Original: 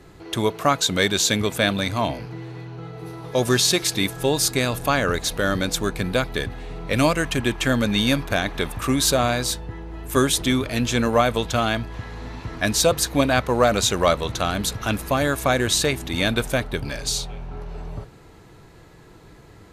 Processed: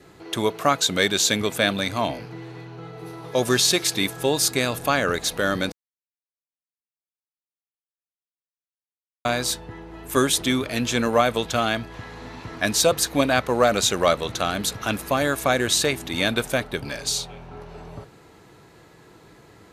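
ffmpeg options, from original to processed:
-filter_complex "[0:a]asplit=3[a][b][c];[a]atrim=end=5.72,asetpts=PTS-STARTPTS,afade=t=out:st=5.716:d=0.004:c=hsin[d];[b]atrim=start=5.72:end=9.25,asetpts=PTS-STARTPTS,volume=0[e];[c]atrim=start=9.25,asetpts=PTS-STARTPTS,afade=t=in:d=0.004:c=hsin[f];[d][e][f]concat=n=3:v=0:a=1,highpass=f=180:p=1,adynamicequalizer=threshold=0.00631:dfrequency=980:dqfactor=6.3:tfrequency=980:tqfactor=6.3:attack=5:release=100:ratio=0.375:range=2:mode=cutabove:tftype=bell"

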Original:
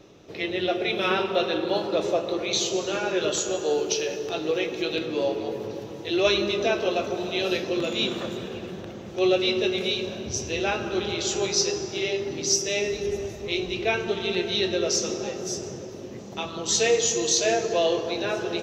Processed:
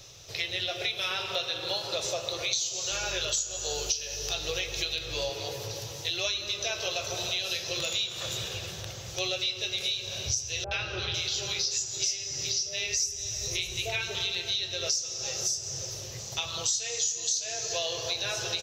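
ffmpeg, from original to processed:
-filter_complex "[0:a]asettb=1/sr,asplit=3[a][b][c];[a]atrim=end=2.914[d];[b]atrim=start=2.91:end=5.3,asetpts=PTS-STARTPTS,afade=t=in:d=0.004:c=qsin,afade=t=out:st=2.386:d=0.004:c=qsin,aeval=exprs='val(0)+0.00794*(sin(2*PI*50*n/s)+sin(2*PI*2*50*n/s)/2+sin(2*PI*3*50*n/s)/3+sin(2*PI*4*50*n/s)/4+sin(2*PI*5*50*n/s)/5)':c=same[e];[c]atrim=start=5.296[f];[d][e]acrossfade=d=0.004:c1=hsin:c2=qsin[g];[g][f]acrossfade=d=0.004:c1=qsin:c2=hsin,asettb=1/sr,asplit=3[h][i][j];[h]atrim=end=10.644[k];[i]atrim=start=10.64:end=14.15,asetpts=PTS-STARTPTS,afade=t=in:d=0.004:c=qsin,afade=t=out:st=3.506:d=0.004:c=qsin,acrossover=split=830|4600[l][m][n];[m]adelay=70[o];[n]adelay=500[p];[l][o][p]amix=inputs=3:normalize=0,atrim=end_sample=154791[q];[j]atrim=start=14.146[r];[k][q]acrossfade=d=0.004:c1=hsin:c2=qsin[s];[s][r]acrossfade=d=0.004:c1=qsin:c2=hsin,firequalizer=gain_entry='entry(120,0);entry(220,-26);entry(520,-9);entry(5000,11)':delay=0.05:min_phase=1,acompressor=threshold=-32dB:ratio=8,volume=4.5dB"

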